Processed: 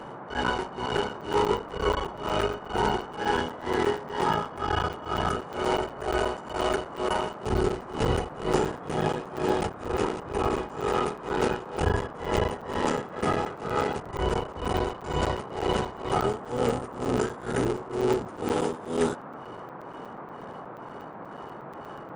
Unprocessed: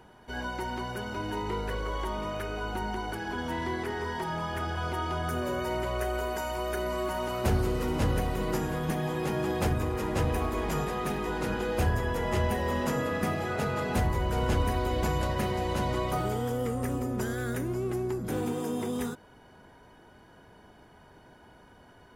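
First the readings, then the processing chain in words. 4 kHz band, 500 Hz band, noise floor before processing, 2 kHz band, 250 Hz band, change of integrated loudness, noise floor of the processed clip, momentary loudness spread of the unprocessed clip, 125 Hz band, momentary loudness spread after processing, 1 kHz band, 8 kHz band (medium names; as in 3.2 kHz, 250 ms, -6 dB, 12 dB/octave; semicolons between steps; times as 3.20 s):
+4.5 dB, +4.5 dB, -55 dBFS, +1.5 dB, +1.0 dB, +2.5 dB, -42 dBFS, 6 LU, -2.5 dB, 14 LU, +4.5 dB, +0.5 dB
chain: cycle switcher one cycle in 3, muted; bass shelf 64 Hz -6.5 dB; gain riding within 3 dB 0.5 s; small resonant body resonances 420/850/1300/2900 Hz, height 10 dB; tremolo 2.1 Hz, depth 95%; band noise 120–1200 Hz -47 dBFS; brick-wall FIR low-pass 10 kHz; crackling interface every 0.12 s, samples 256, zero, from 0.97 s; trim +6 dB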